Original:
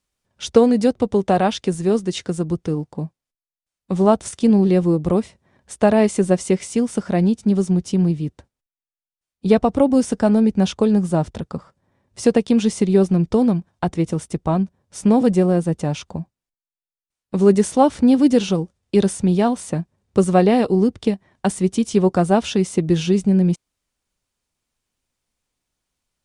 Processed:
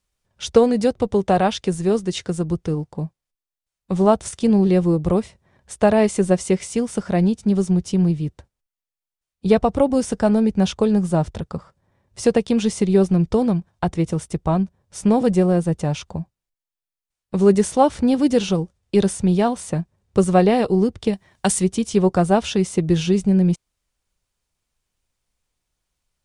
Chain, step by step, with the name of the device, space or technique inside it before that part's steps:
0:21.13–0:21.64: high-shelf EQ 2,500 Hz +10.5 dB
low shelf boost with a cut just above (low-shelf EQ 74 Hz +7.5 dB; parametric band 260 Hz −5 dB 0.6 octaves)

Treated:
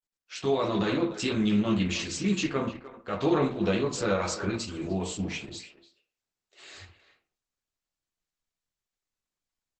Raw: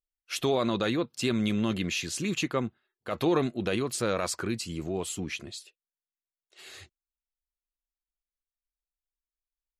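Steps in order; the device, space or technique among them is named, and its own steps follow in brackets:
speakerphone in a meeting room (convolution reverb RT60 0.40 s, pre-delay 7 ms, DRR −1.5 dB; far-end echo of a speakerphone 300 ms, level −13 dB; automatic gain control gain up to 7 dB; level −8.5 dB; Opus 12 kbit/s 48,000 Hz)

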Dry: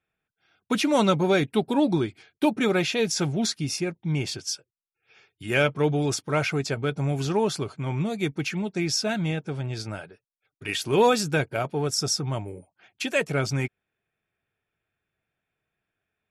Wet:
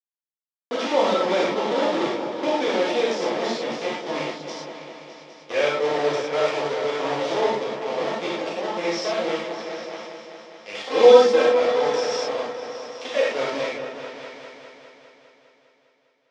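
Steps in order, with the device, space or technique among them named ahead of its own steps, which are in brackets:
hand-held game console (bit reduction 4 bits; loudspeaker in its box 420–4,700 Hz, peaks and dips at 530 Hz +8 dB, 1,500 Hz −7 dB, 2,600 Hz −6 dB, 4,200 Hz −5 dB)
0:10.78–0:11.46: comb filter 3.8 ms, depth 95%
echo whose low-pass opens from repeat to repeat 202 ms, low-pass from 400 Hz, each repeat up 2 octaves, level −6 dB
reverb whose tail is shaped and stops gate 140 ms flat, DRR −6.5 dB
level −5.5 dB

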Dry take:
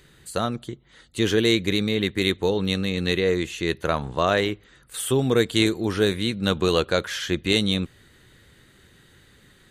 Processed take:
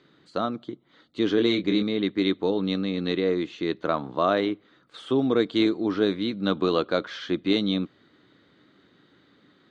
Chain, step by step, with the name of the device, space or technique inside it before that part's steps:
kitchen radio (loudspeaker in its box 180–4,400 Hz, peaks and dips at 190 Hz +3 dB, 290 Hz +10 dB, 650 Hz +4 dB, 1,200 Hz +5 dB, 1,800 Hz −5 dB, 2,700 Hz −6 dB)
0:01.36–0:01.83: double-tracking delay 25 ms −6 dB
level −4 dB

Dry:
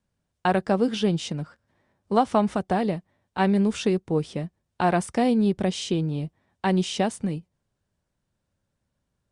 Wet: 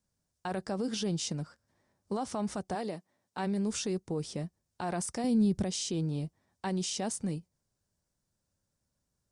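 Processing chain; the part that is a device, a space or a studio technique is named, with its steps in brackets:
over-bright horn tweeter (high shelf with overshoot 4,100 Hz +7.5 dB, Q 1.5; brickwall limiter −20 dBFS, peak gain reduction 12 dB)
0:02.74–0:03.45: high-pass filter 330 Hz → 120 Hz 12 dB per octave
0:05.24–0:05.64: bass and treble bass +10 dB, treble +3 dB
level −5.5 dB

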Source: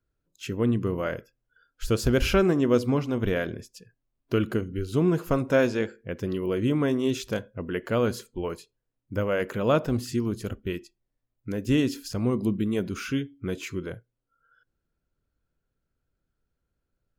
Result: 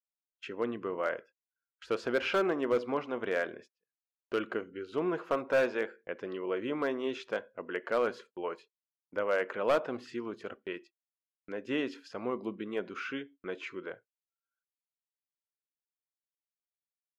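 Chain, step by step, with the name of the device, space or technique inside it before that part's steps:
walkie-talkie (band-pass filter 530–2,300 Hz; hard clipping −20.5 dBFS, distortion −15 dB; noise gate −53 dBFS, range −31 dB)

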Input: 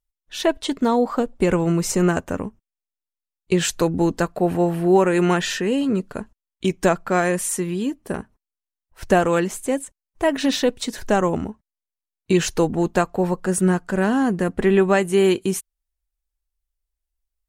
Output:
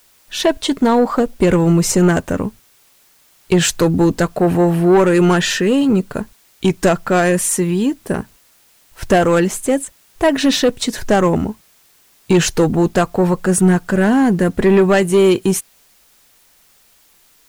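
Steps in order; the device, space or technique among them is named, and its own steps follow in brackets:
open-reel tape (soft clipping −13.5 dBFS, distortion −14 dB; parametric band 130 Hz +4 dB 0.77 octaves; white noise bed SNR 37 dB)
level +7.5 dB

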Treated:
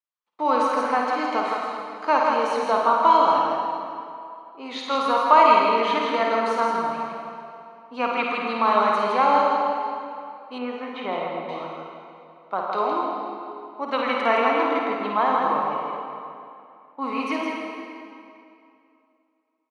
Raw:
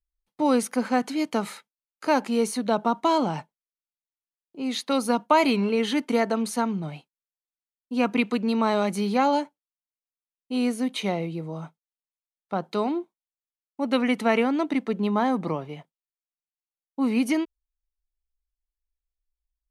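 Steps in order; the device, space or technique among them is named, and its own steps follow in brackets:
station announcement (band-pass filter 450–3,900 Hz; parametric band 1,100 Hz +9.5 dB 0.57 octaves; loudspeakers that aren't time-aligned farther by 18 metres −6 dB, 56 metres −5 dB; convolution reverb RT60 2.6 s, pre-delay 48 ms, DRR 0.5 dB)
0:10.58–0:11.49: low-pass filter 2,200 Hz 12 dB per octave
level −1 dB

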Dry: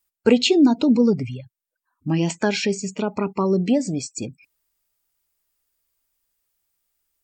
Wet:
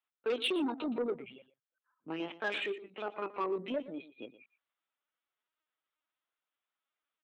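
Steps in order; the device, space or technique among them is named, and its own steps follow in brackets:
0:02.33–0:03.05: mains-hum notches 60/120/180/240/300/360/420 Hz
talking toy (linear-prediction vocoder at 8 kHz pitch kept; high-pass filter 370 Hz 12 dB per octave; parametric band 1,300 Hz +6.5 dB 0.37 octaves; soft clipping −18 dBFS, distortion −14 dB)
low-shelf EQ 160 Hz −10 dB
single-tap delay 118 ms −16 dB
level −7.5 dB

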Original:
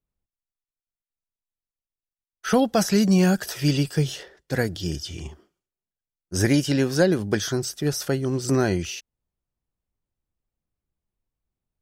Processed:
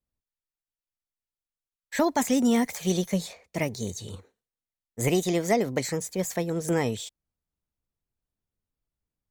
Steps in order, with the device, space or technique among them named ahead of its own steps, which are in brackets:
nightcore (speed change +27%)
level −4 dB

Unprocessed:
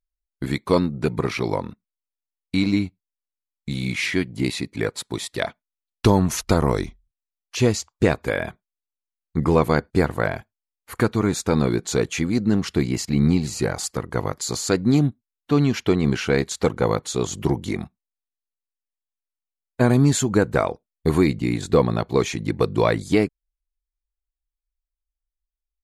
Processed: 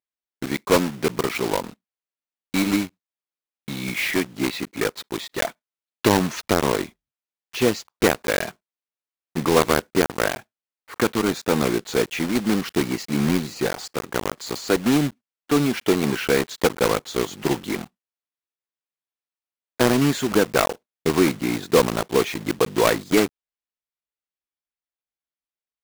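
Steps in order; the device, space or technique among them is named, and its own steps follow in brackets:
early digital voice recorder (band-pass filter 220–3,900 Hz; one scale factor per block 3 bits)
level +1 dB

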